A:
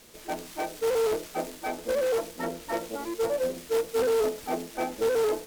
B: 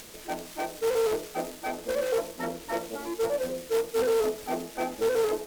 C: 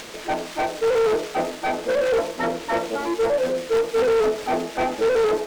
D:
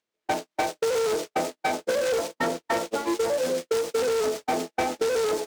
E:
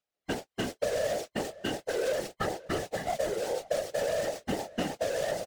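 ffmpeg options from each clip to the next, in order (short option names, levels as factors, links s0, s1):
-af "bandreject=f=46.97:t=h:w=4,bandreject=f=93.94:t=h:w=4,bandreject=f=140.91:t=h:w=4,bandreject=f=187.88:t=h:w=4,bandreject=f=234.85:t=h:w=4,bandreject=f=281.82:t=h:w=4,bandreject=f=328.79:t=h:w=4,bandreject=f=375.76:t=h:w=4,bandreject=f=422.73:t=h:w=4,bandreject=f=469.7:t=h:w=4,bandreject=f=516.67:t=h:w=4,bandreject=f=563.64:t=h:w=4,bandreject=f=610.61:t=h:w=4,bandreject=f=657.58:t=h:w=4,bandreject=f=704.55:t=h:w=4,bandreject=f=751.52:t=h:w=4,bandreject=f=798.49:t=h:w=4,bandreject=f=845.46:t=h:w=4,bandreject=f=892.43:t=h:w=4,bandreject=f=939.4:t=h:w=4,bandreject=f=986.37:t=h:w=4,bandreject=f=1033.34:t=h:w=4,bandreject=f=1080.31:t=h:w=4,bandreject=f=1127.28:t=h:w=4,bandreject=f=1174.25:t=h:w=4,bandreject=f=1221.22:t=h:w=4,bandreject=f=1268.19:t=h:w=4,bandreject=f=1315.16:t=h:w=4,acompressor=mode=upward:threshold=0.0112:ratio=2.5"
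-filter_complex "[0:a]equalizer=f=12000:w=1.6:g=-7,asplit=2[s0][s1];[s1]highpass=f=720:p=1,volume=7.94,asoftclip=type=tanh:threshold=0.158[s2];[s0][s2]amix=inputs=2:normalize=0,lowpass=f=2700:p=1,volume=0.501,lowshelf=f=320:g=5,volume=1.26"
-filter_complex "[0:a]highpass=59,agate=range=0.00158:threshold=0.0562:ratio=16:detection=peak,acrossover=split=4700[s0][s1];[s0]acompressor=threshold=0.0282:ratio=6[s2];[s2][s1]amix=inputs=2:normalize=0,volume=2.24"
-filter_complex "[0:a]afftfilt=real='real(if(between(b,1,1008),(2*floor((b-1)/48)+1)*48-b,b),0)':imag='imag(if(between(b,1,1008),(2*floor((b-1)/48)+1)*48-b,b),0)*if(between(b,1,1008),-1,1)':win_size=2048:overlap=0.75,asplit=2[s0][s1];[s1]adelay=531,lowpass=f=2800:p=1,volume=0.106,asplit=2[s2][s3];[s3]adelay=531,lowpass=f=2800:p=1,volume=0.17[s4];[s0][s2][s4]amix=inputs=3:normalize=0,afftfilt=real='hypot(re,im)*cos(2*PI*random(0))':imag='hypot(re,im)*sin(2*PI*random(1))':win_size=512:overlap=0.75"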